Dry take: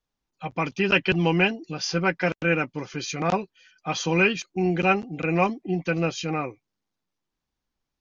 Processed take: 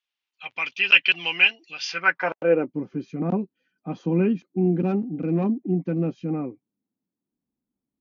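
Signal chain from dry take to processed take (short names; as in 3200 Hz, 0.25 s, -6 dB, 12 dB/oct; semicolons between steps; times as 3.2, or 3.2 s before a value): 4.76–6.2 hard clip -17 dBFS, distortion -19 dB; band-pass sweep 2800 Hz -> 240 Hz, 1.86–2.79; gain +8.5 dB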